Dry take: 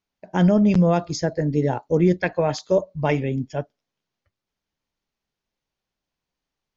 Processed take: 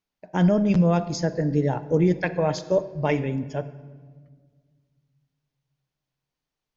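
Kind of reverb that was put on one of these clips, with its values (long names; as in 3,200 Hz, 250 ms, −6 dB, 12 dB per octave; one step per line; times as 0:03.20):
rectangular room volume 2,000 cubic metres, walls mixed, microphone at 0.47 metres
level −2.5 dB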